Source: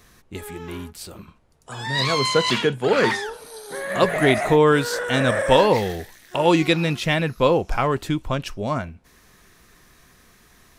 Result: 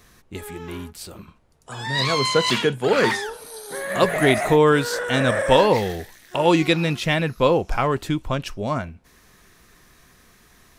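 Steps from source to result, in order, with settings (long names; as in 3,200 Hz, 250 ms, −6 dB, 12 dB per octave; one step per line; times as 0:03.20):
0:02.42–0:04.70: high-shelf EQ 10,000 Hz +8 dB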